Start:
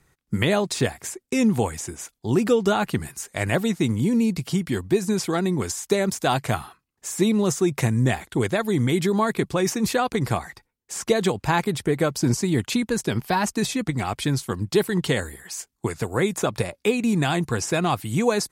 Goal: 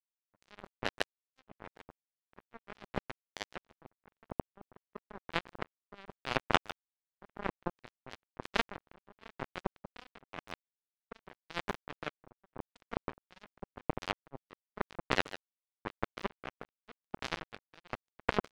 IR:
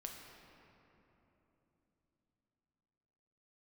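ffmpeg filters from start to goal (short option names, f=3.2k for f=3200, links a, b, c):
-filter_complex "[0:a]highpass=f=150:w=0.5412,highpass=f=150:w=1.3066,afwtdn=0.0282,lowpass=1.9k,asplit=2[a][b];[b]adelay=150,highpass=300,lowpass=3.4k,asoftclip=type=hard:threshold=-16.5dB,volume=-7dB[c];[a][c]amix=inputs=2:normalize=0,areverse,acompressor=threshold=-35dB:ratio=12,areverse,aeval=exprs='val(0)+0.000631*(sin(2*PI*50*n/s)+sin(2*PI*2*50*n/s)/2+sin(2*PI*3*50*n/s)/3+sin(2*PI*4*50*n/s)/4+sin(2*PI*5*50*n/s)/5)':c=same,asplit=2[d][e];[e]adelay=15,volume=-12.5dB[f];[d][f]amix=inputs=2:normalize=0,asplit=2[g][h];[1:a]atrim=start_sample=2205,atrim=end_sample=4410[i];[h][i]afir=irnorm=-1:irlink=0,volume=-3dB[j];[g][j]amix=inputs=2:normalize=0,acrusher=bits=3:mix=0:aa=0.5,aeval=exprs='val(0)*pow(10,-22*(0.5-0.5*cos(2*PI*0.93*n/s))/20)':c=same,volume=16dB"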